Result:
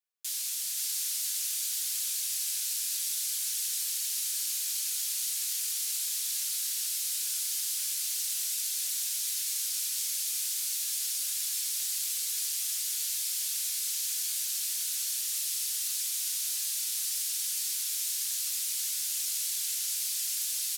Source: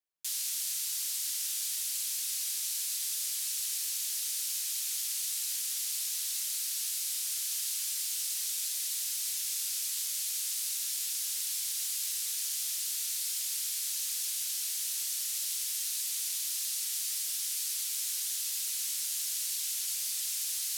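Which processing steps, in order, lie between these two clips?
high-pass 1.3 kHz 6 dB/octave; delay 527 ms -3.5 dB; on a send at -2 dB: reverberation, pre-delay 3 ms

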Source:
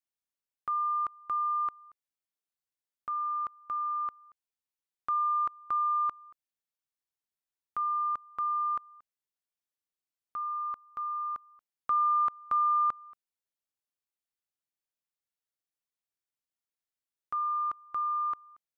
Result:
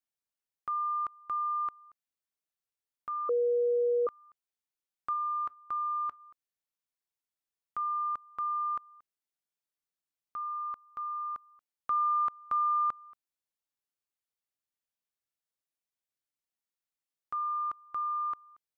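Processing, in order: 3.29–4.07 s: bleep 481 Hz -22 dBFS; 5.13–6.20 s: feedback comb 81 Hz, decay 0.19 s, harmonics odd, mix 30%; trim -2 dB

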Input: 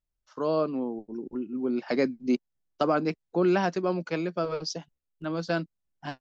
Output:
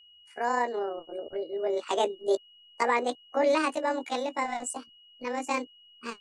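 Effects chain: rotating-head pitch shifter +8 st; whistle 2.9 kHz -54 dBFS

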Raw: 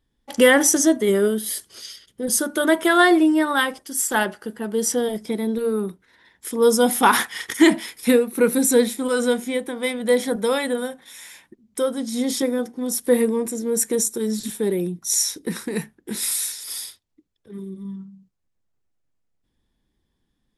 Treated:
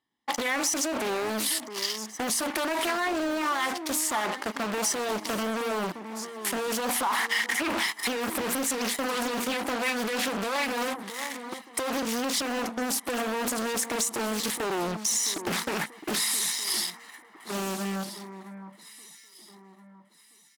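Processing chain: low-pass 3.8 kHz 6 dB/octave; in parallel at -6.5 dB: fuzz box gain 38 dB, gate -42 dBFS; on the sum: high-pass 380 Hz 12 dB/octave; peak limiter -14 dBFS, peak gain reduction 11.5 dB; comb 1 ms, depth 63%; on a send: echo whose repeats swap between lows and highs 662 ms, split 1.7 kHz, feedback 56%, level -12 dB; on the sum: compression 4:1, threshold -22 dBFS, peak gain reduction 6.5 dB; loudspeaker Doppler distortion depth 0.66 ms; trim -2 dB

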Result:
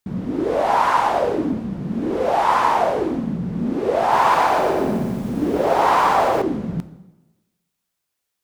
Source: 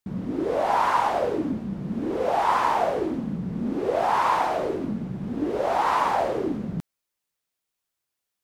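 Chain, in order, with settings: plate-style reverb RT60 1.1 s, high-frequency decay 0.8×, DRR 12 dB; 4.00–6.42 s: bit-crushed delay 119 ms, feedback 55%, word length 8-bit, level -3 dB; trim +4.5 dB

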